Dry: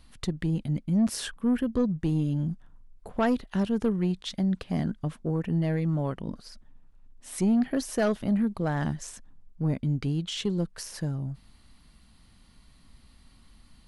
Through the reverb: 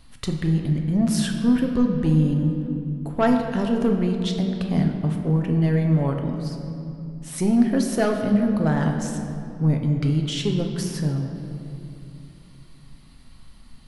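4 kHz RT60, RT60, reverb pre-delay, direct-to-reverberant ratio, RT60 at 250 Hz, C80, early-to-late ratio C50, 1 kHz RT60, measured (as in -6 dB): 1.7 s, 2.6 s, 7 ms, 2.5 dB, 3.6 s, 6.0 dB, 5.0 dB, 2.4 s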